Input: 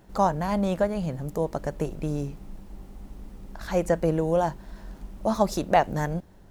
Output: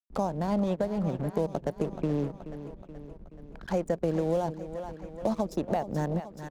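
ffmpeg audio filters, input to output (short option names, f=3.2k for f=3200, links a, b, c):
-filter_complex "[0:a]highshelf=f=7k:g=4.5,anlmdn=15.8,asplit=2[a][b];[b]acompressor=threshold=-35dB:ratio=6,volume=-2dB[c];[a][c]amix=inputs=2:normalize=0,aeval=exprs='sgn(val(0))*max(abs(val(0))-0.0106,0)':c=same,alimiter=limit=-16dB:level=0:latency=1:release=358,asplit=2[d][e];[e]aecho=0:1:427|854|1281|1708|2135:0.178|0.0996|0.0558|0.0312|0.0175[f];[d][f]amix=inputs=2:normalize=0,acrossover=split=130|720|3500[g][h][i][j];[g]acompressor=threshold=-50dB:ratio=4[k];[h]acompressor=threshold=-28dB:ratio=4[l];[i]acompressor=threshold=-47dB:ratio=4[m];[j]acompressor=threshold=-55dB:ratio=4[n];[k][l][m][n]amix=inputs=4:normalize=0,volume=3.5dB"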